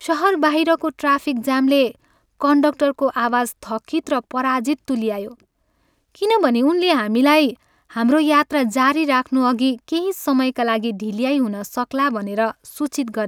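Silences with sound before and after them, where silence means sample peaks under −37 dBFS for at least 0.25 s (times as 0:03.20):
0:01.95–0:02.41
0:05.40–0:06.15
0:07.54–0:07.90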